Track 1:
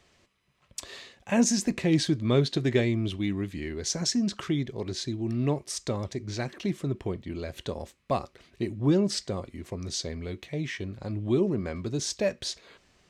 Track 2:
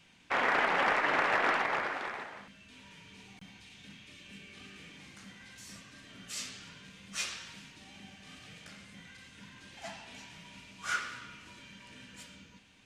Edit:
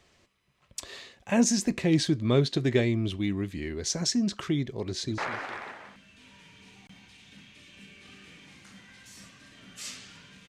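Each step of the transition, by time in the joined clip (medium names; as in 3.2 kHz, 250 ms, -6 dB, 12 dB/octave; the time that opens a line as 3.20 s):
track 1
4.82–5.18 s: echo throw 210 ms, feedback 25%, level -12.5 dB
5.18 s: go over to track 2 from 1.70 s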